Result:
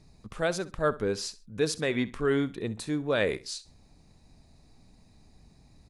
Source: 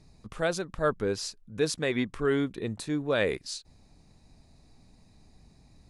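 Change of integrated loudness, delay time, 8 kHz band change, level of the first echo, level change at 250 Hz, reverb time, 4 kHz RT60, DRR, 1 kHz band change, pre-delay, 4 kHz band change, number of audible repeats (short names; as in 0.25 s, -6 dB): 0.0 dB, 65 ms, 0.0 dB, -18.0 dB, 0.0 dB, none, none, none, 0.0 dB, none, 0.0 dB, 2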